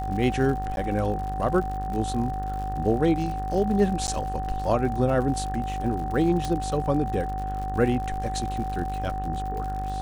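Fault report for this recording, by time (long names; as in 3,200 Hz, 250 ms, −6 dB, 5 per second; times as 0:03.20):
mains buzz 50 Hz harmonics 38 −32 dBFS
surface crackle 93 per second −33 dBFS
whistle 760 Hz −30 dBFS
0:00.76–0:00.77: drop-out 11 ms
0:04.07–0:04.08: drop-out 9.5 ms
0:06.45: click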